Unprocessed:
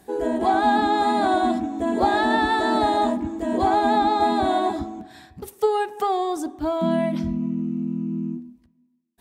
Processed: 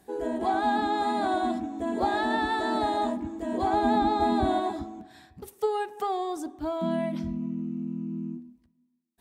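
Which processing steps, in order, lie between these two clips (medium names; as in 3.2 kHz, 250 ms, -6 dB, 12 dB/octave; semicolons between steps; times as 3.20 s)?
3.73–4.60 s: bass shelf 240 Hz +11.5 dB; trim -6.5 dB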